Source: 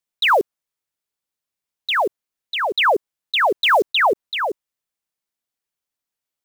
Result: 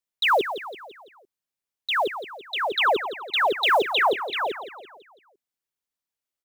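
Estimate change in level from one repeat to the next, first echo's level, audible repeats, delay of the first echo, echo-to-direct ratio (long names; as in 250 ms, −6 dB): −6.0 dB, −11.0 dB, 4, 168 ms, −10.0 dB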